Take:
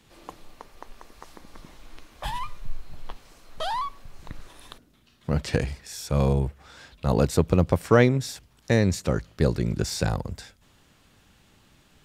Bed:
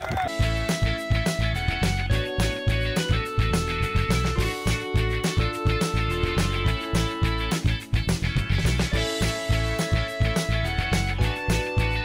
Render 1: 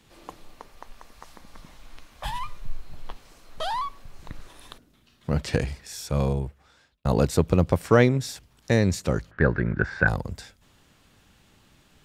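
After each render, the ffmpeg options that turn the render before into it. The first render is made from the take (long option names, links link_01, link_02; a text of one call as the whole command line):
ffmpeg -i in.wav -filter_complex "[0:a]asettb=1/sr,asplit=3[link_01][link_02][link_03];[link_01]atrim=end=0.754[link_04];[link_02]atrim=start=0.75:end=2.45,asetpts=PTS-STARTPTS,afade=type=in:duration=0.004:curve=qsin,afade=type=out:start_time=1.696:duration=0.004:curve=qsin,equalizer=frequency=360:width_type=o:width=0.77:gain=-6.5[link_05];[link_03]atrim=start=2.446[link_06];[link_04][link_05]acrossfade=duration=0.004:curve1=hsin:curve2=qsin[link_07];[link_07][link_06]acrossfade=duration=0.004:curve1=qsin:curve2=hsin,asplit=3[link_08][link_09][link_10];[link_08]afade=type=out:start_time=9.3:duration=0.02[link_11];[link_09]lowpass=frequency=1600:width_type=q:width=8.6,afade=type=in:start_time=9.3:duration=0.02,afade=type=out:start_time=10.07:duration=0.02[link_12];[link_10]afade=type=in:start_time=10.07:duration=0.02[link_13];[link_11][link_12][link_13]amix=inputs=3:normalize=0,asplit=2[link_14][link_15];[link_14]atrim=end=7.05,asetpts=PTS-STARTPTS,afade=type=out:start_time=6:duration=1.05[link_16];[link_15]atrim=start=7.05,asetpts=PTS-STARTPTS,afade=type=in:duration=0.004:curve=hsin[link_17];[link_16][link_17]concat=n=2:v=0:a=1" out.wav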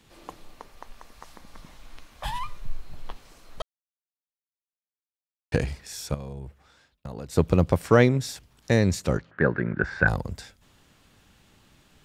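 ffmpeg -i in.wav -filter_complex "[0:a]asettb=1/sr,asplit=3[link_01][link_02][link_03];[link_01]atrim=end=6.144[link_04];[link_02]atrim=start=6.14:end=7.37,asetpts=PTS-STARTPTS,afade=type=in:duration=0.004:curve=qsin,afade=type=out:start_time=1.226:duration=0.004:curve=qsin,acompressor=threshold=-35dB:ratio=4:attack=3.2:release=140:knee=1:detection=peak[link_05];[link_03]atrim=start=7.366[link_06];[link_04][link_05]acrossfade=duration=0.004:curve1=hsin:curve2=qsin[link_07];[link_07][link_06]acrossfade=duration=0.004:curve1=qsin:curve2=hsin,asettb=1/sr,asplit=3[link_08][link_09][link_10];[link_08]atrim=end=9.174[link_11];[link_09]atrim=start=9.17:end=9.84,asetpts=PTS-STARTPTS,afade=type=in:duration=0.004:curve=qsin,afade=type=out:start_time=0.666:duration=0.004:curve=qsin,highpass=140,lowpass=3500[link_12];[link_10]atrim=start=9.836[link_13];[link_11][link_12]acrossfade=duration=0.004:curve1=hsin:curve2=qsin[link_14];[link_14][link_13]acrossfade=duration=0.004:curve1=qsin:curve2=hsin,asplit=3[link_15][link_16][link_17];[link_15]atrim=end=3.62,asetpts=PTS-STARTPTS,afade=type=out:start_time=3.616:duration=0.004:curve=hsin[link_18];[link_16]atrim=start=3.62:end=5.52,asetpts=PTS-STARTPTS,volume=0[link_19];[link_17]atrim=start=5.52,asetpts=PTS-STARTPTS,afade=type=in:duration=0.004:curve=hsin[link_20];[link_18][link_19][link_20]concat=n=3:v=0:a=1" out.wav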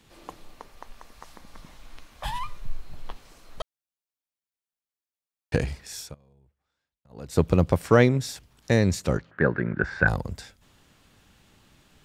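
ffmpeg -i in.wav -filter_complex "[0:a]asplit=3[link_01][link_02][link_03];[link_01]atrim=end=6.15,asetpts=PTS-STARTPTS,afade=type=out:start_time=5.99:duration=0.16:silence=0.0749894[link_04];[link_02]atrim=start=6.15:end=7.09,asetpts=PTS-STARTPTS,volume=-22.5dB[link_05];[link_03]atrim=start=7.09,asetpts=PTS-STARTPTS,afade=type=in:duration=0.16:silence=0.0749894[link_06];[link_04][link_05][link_06]concat=n=3:v=0:a=1" out.wav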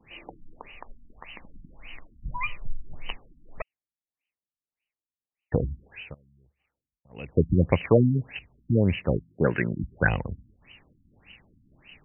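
ffmpeg -i in.wav -af "aexciter=amount=12.4:drive=7.5:freq=2300,afftfilt=real='re*lt(b*sr/1024,290*pow(3100/290,0.5+0.5*sin(2*PI*1.7*pts/sr)))':imag='im*lt(b*sr/1024,290*pow(3100/290,0.5+0.5*sin(2*PI*1.7*pts/sr)))':win_size=1024:overlap=0.75" out.wav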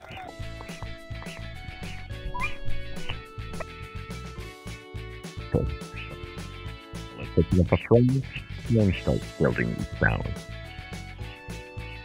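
ffmpeg -i in.wav -i bed.wav -filter_complex "[1:a]volume=-14.5dB[link_01];[0:a][link_01]amix=inputs=2:normalize=0" out.wav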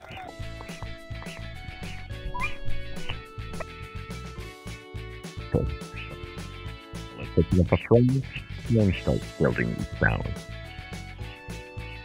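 ffmpeg -i in.wav -af anull out.wav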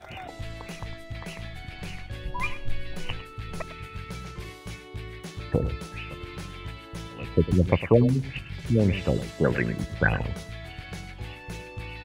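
ffmpeg -i in.wav -af "aecho=1:1:103:0.211" out.wav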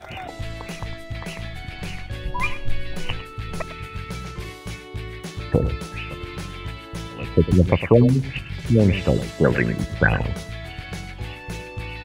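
ffmpeg -i in.wav -af "volume=5.5dB,alimiter=limit=-2dB:level=0:latency=1" out.wav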